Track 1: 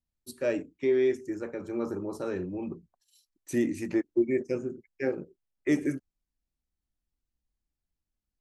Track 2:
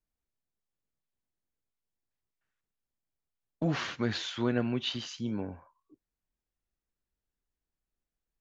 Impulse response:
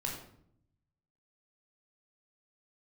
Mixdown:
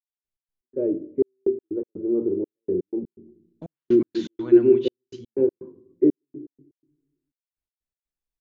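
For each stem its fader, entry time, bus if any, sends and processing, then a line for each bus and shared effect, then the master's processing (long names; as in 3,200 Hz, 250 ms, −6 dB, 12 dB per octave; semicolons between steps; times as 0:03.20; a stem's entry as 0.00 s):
−1.0 dB, 0.35 s, send −13.5 dB, noise gate with hold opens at −55 dBFS; low-pass with resonance 380 Hz, resonance Q 3.9
−7.5 dB, 0.00 s, send −13 dB, hum removal 63.91 Hz, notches 22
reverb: on, RT60 0.65 s, pre-delay 15 ms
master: gate pattern "..x.x.xxxx" 123 BPM −60 dB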